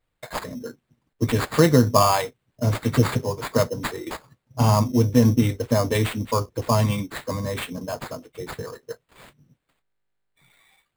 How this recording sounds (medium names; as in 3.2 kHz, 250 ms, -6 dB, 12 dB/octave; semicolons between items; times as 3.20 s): aliases and images of a low sample rate 5.8 kHz, jitter 0%